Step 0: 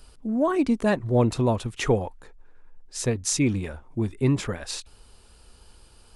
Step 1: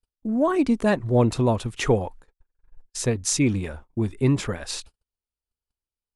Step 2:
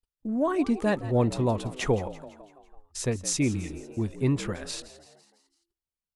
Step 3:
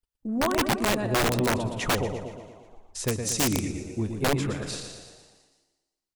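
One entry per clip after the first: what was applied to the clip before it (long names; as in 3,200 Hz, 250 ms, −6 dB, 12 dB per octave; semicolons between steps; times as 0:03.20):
noise gate −42 dBFS, range −44 dB; level +1.5 dB
echo with shifted repeats 167 ms, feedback 54%, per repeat +66 Hz, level −16 dB; healed spectral selection 0:03.56–0:03.91, 260–1,800 Hz both; level −4.5 dB
on a send: repeating echo 117 ms, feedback 53%, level −6.5 dB; on the sum: wrap-around overflow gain 17.5 dB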